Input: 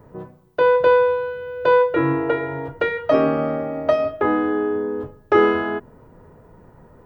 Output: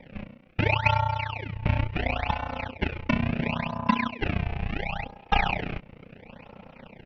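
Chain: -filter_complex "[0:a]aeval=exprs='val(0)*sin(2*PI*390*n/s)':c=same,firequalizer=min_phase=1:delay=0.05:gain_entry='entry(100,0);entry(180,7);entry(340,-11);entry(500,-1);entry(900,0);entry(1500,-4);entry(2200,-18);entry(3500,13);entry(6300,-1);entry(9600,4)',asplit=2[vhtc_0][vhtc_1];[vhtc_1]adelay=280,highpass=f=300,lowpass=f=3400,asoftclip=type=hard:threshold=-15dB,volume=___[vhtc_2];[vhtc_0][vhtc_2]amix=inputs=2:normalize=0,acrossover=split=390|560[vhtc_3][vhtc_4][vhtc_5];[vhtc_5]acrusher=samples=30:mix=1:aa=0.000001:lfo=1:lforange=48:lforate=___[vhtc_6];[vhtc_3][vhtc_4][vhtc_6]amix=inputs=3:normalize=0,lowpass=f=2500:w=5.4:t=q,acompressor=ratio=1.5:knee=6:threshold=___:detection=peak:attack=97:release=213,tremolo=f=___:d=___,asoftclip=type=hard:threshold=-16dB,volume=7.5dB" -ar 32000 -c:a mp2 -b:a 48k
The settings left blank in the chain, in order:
-28dB, 0.72, -48dB, 30, 0.889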